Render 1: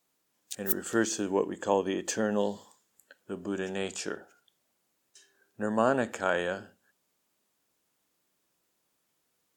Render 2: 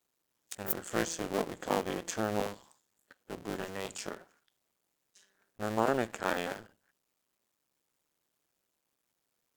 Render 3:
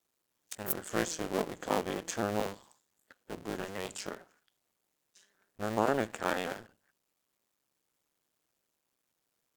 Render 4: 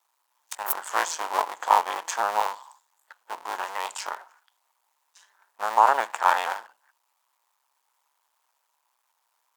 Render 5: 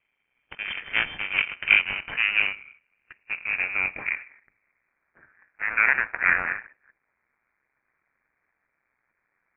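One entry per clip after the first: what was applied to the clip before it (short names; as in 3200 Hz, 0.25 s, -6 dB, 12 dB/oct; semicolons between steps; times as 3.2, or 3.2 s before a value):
cycle switcher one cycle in 2, muted; gain -2 dB
shaped vibrato saw up 4.5 Hz, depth 100 cents
resonant high-pass 930 Hz, resonance Q 4.9; gain +6 dB
half-wave gain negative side -7 dB; high-pass sweep 180 Hz -> 1600 Hz, 1.09–5.04; inverted band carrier 3300 Hz; gain +2.5 dB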